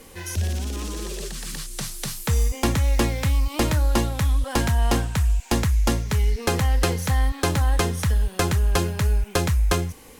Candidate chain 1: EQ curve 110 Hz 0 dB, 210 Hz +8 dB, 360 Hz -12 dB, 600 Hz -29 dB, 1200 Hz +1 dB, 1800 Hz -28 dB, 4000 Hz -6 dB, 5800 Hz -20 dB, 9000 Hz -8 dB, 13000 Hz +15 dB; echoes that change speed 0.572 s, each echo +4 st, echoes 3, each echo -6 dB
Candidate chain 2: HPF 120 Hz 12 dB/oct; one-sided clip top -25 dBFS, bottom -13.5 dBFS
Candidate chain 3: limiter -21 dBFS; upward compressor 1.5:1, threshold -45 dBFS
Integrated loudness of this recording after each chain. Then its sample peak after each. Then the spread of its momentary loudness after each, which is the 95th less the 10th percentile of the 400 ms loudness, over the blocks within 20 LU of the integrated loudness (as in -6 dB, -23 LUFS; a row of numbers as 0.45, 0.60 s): -22.0, -28.5, -30.0 LUFS; -5.0, -13.0, -21.0 dBFS; 8, 6, 3 LU